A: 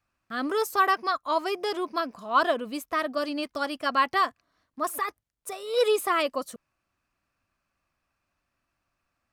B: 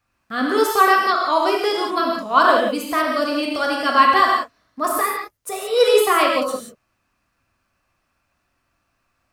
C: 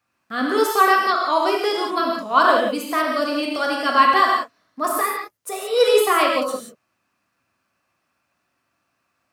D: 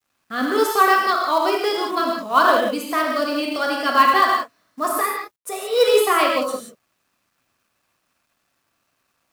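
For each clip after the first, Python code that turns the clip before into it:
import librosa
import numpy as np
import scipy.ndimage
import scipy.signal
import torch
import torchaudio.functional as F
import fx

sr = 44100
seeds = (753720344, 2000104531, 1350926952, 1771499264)

y1 = fx.rev_gated(x, sr, seeds[0], gate_ms=200, shape='flat', drr_db=-1.5)
y1 = y1 * librosa.db_to_amplitude(5.5)
y2 = scipy.signal.sosfilt(scipy.signal.butter(2, 140.0, 'highpass', fs=sr, output='sos'), y1)
y2 = y2 * librosa.db_to_amplitude(-1.0)
y3 = fx.quant_companded(y2, sr, bits=6)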